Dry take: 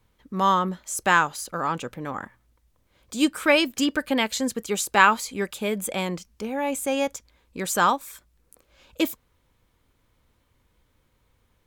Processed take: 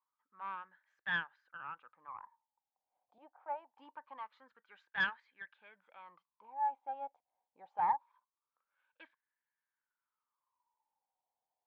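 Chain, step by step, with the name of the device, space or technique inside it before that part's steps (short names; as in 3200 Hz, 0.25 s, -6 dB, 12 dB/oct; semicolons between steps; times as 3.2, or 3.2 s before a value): wah-wah guitar rig (wah 0.24 Hz 730–1700 Hz, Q 11; tube stage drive 21 dB, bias 0.7; speaker cabinet 75–3900 Hz, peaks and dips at 230 Hz -3 dB, 390 Hz -4 dB, 890 Hz +9 dB, 1300 Hz -3 dB); 3.18–3.77 three-band isolator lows -14 dB, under 460 Hz, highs -17 dB, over 2100 Hz; gain -4 dB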